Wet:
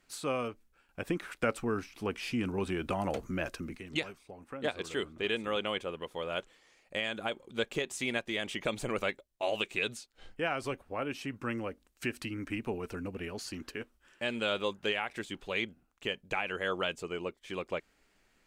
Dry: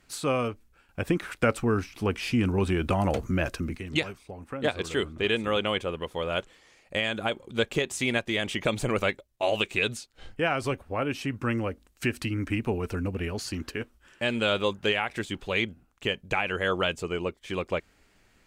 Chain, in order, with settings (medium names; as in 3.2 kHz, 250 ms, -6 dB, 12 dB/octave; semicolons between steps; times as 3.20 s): peaking EQ 82 Hz -8.5 dB 1.6 oct; trim -6 dB